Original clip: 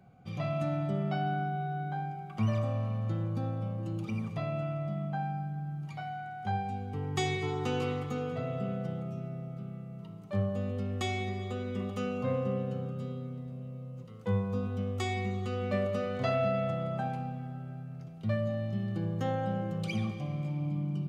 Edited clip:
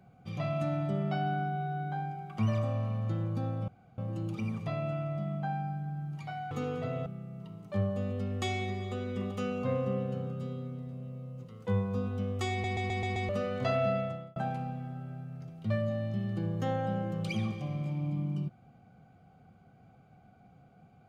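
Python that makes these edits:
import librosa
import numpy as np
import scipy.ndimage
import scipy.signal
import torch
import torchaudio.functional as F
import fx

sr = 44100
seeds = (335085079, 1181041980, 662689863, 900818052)

y = fx.edit(x, sr, fx.insert_room_tone(at_s=3.68, length_s=0.3),
    fx.cut(start_s=6.21, length_s=1.84),
    fx.cut(start_s=8.6, length_s=1.05),
    fx.stutter_over(start_s=15.1, slice_s=0.13, count=6),
    fx.fade_out_span(start_s=16.52, length_s=0.43), tone=tone)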